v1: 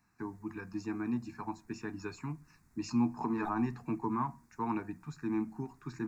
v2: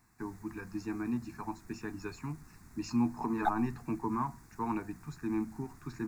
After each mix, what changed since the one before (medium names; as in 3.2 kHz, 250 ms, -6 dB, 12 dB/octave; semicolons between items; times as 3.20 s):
second voice +12.0 dB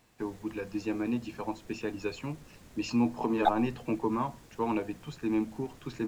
master: remove static phaser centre 1.3 kHz, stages 4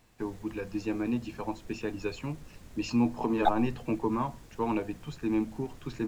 master: add bass shelf 73 Hz +10 dB